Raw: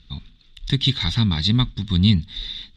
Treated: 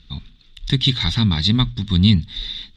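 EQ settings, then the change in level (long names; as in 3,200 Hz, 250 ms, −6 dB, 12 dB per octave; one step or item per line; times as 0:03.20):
mains-hum notches 60/120 Hz
+2.5 dB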